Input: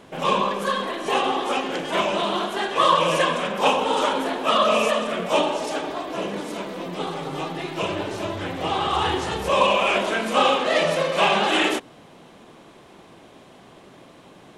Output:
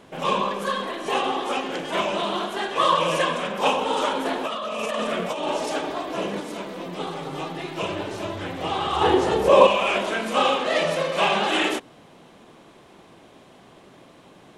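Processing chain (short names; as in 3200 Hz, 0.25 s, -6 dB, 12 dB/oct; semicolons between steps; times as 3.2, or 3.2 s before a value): 4.25–6.4 negative-ratio compressor -24 dBFS, ratio -1; 9.01–9.67 bell 440 Hz +11 dB 2 oct; gain -2 dB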